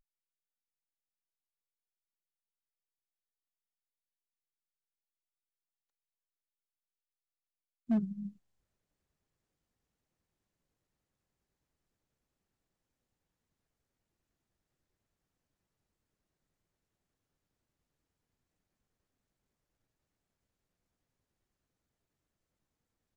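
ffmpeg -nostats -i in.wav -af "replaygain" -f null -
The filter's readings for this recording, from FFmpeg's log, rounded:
track_gain = +64.0 dB
track_peak = 0.042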